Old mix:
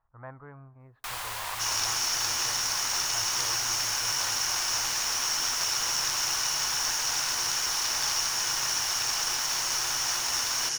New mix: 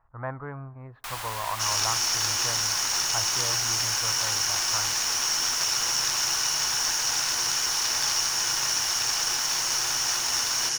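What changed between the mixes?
speech +10.0 dB; second sound: send on

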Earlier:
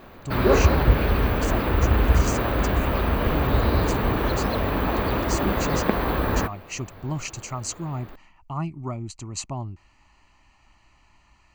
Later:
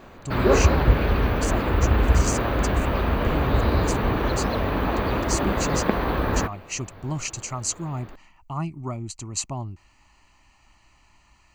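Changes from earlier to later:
speech: add high shelf 6700 Hz +9.5 dB; background: add high shelf 11000 Hz -11.5 dB

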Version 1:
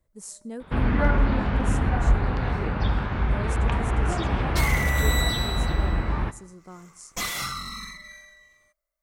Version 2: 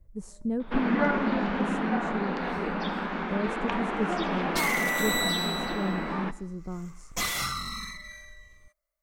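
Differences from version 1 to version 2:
speech: add tilt -4 dB/oct; first sound: add steep high-pass 170 Hz 96 dB/oct

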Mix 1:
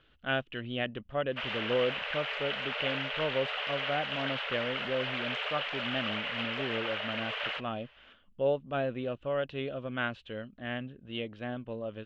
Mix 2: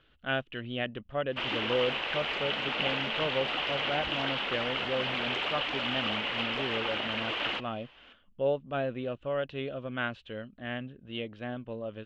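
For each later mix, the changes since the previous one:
background: remove rippled Chebyshev high-pass 420 Hz, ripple 6 dB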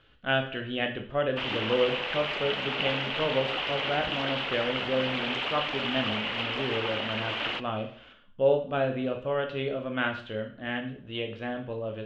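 reverb: on, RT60 0.50 s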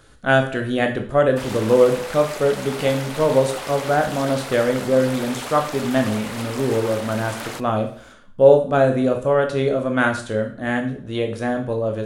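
background -8.5 dB; master: remove ladder low-pass 3200 Hz, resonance 70%

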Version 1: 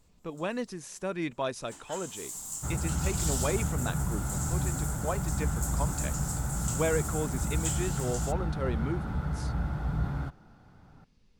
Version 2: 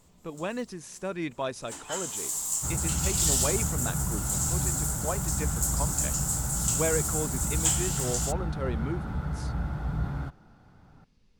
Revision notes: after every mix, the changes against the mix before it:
first sound +8.5 dB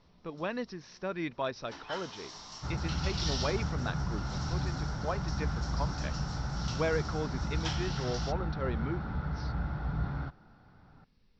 master: add rippled Chebyshev low-pass 5700 Hz, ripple 3 dB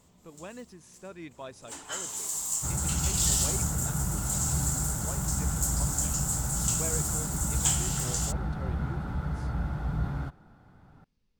speech -10.5 dB; first sound: add bell 11000 Hz -3.5 dB 0.55 oct; master: remove rippled Chebyshev low-pass 5700 Hz, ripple 3 dB

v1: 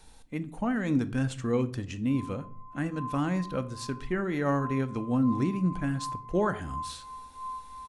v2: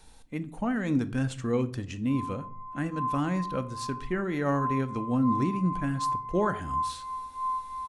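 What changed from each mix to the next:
background +7.5 dB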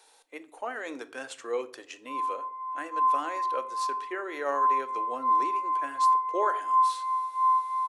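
background +7.5 dB; master: add inverse Chebyshev high-pass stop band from 200 Hz, stop band 40 dB

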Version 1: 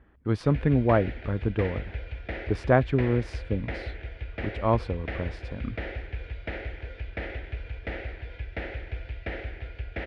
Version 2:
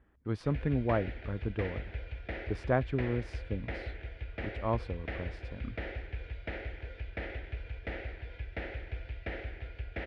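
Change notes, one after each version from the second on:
speech -8.0 dB; background -4.5 dB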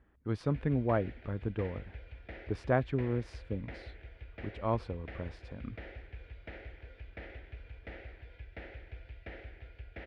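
background -7.5 dB

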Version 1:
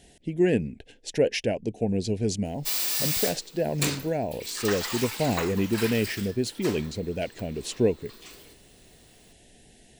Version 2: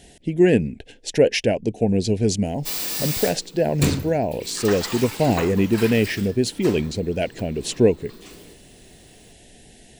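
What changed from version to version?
speech +6.5 dB; background: remove HPF 990 Hz 6 dB/oct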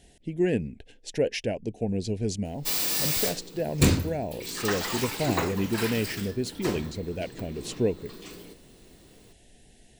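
speech -9.5 dB; master: add low shelf 62 Hz +7.5 dB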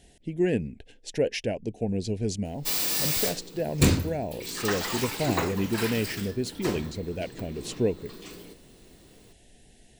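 none

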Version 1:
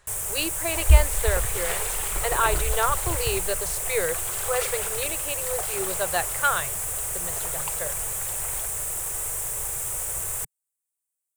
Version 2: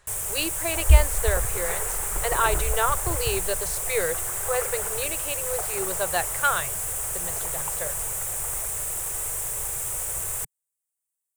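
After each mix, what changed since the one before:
second sound: add LPF 1900 Hz 24 dB/oct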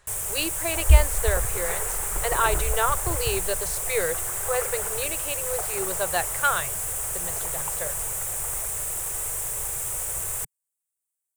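none

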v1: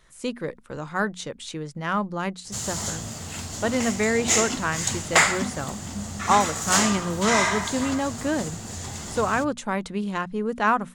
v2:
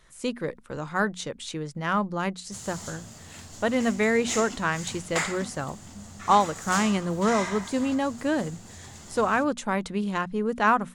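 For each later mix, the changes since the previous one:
background -10.5 dB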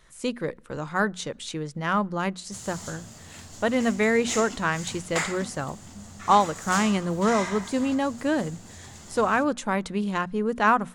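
reverb: on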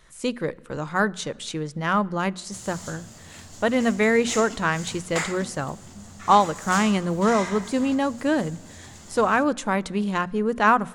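speech: send +11.5 dB

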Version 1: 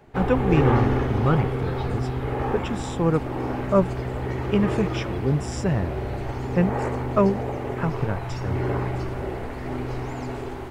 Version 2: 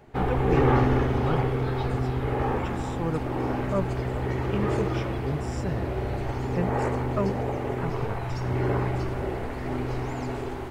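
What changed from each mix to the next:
speech -8.5 dB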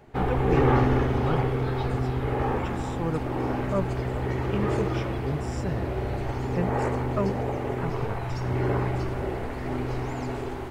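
none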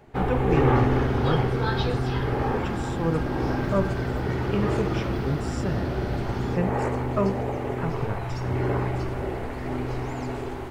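second sound +11.5 dB; reverb: on, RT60 0.45 s

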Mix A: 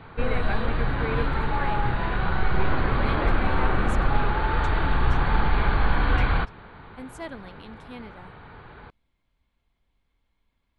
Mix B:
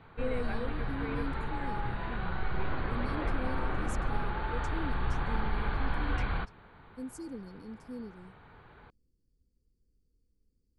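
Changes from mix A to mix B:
speech: add brick-wall FIR band-stop 530–4300 Hz; background -10.0 dB

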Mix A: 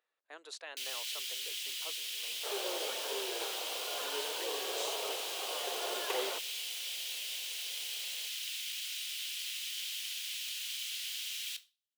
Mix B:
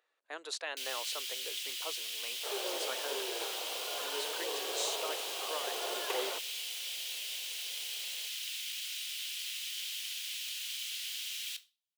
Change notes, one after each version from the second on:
speech +7.0 dB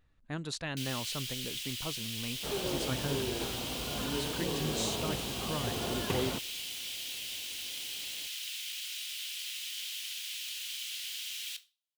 master: remove steep high-pass 420 Hz 36 dB/oct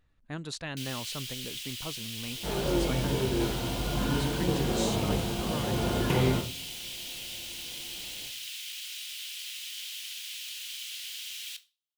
second sound: send on

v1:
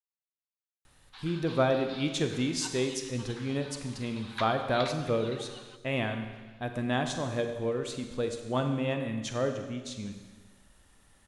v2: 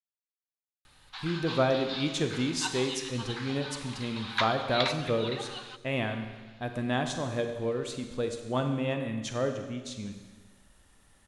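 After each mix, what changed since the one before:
background +8.5 dB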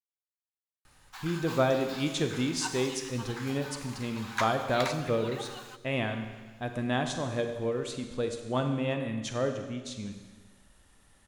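background: remove synth low-pass 3800 Hz, resonance Q 3.2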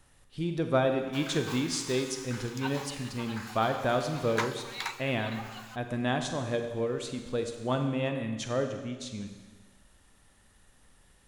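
speech: entry -0.85 s

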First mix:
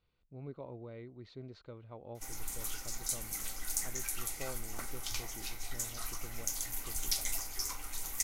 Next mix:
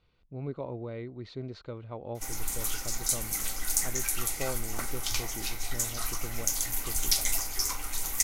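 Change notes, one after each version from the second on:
speech +9.0 dB; background +7.5 dB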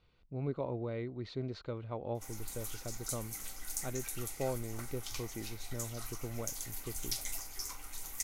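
background -11.5 dB

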